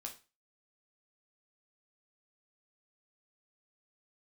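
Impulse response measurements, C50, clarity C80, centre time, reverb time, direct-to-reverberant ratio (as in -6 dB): 11.5 dB, 18.0 dB, 13 ms, 0.30 s, 1.0 dB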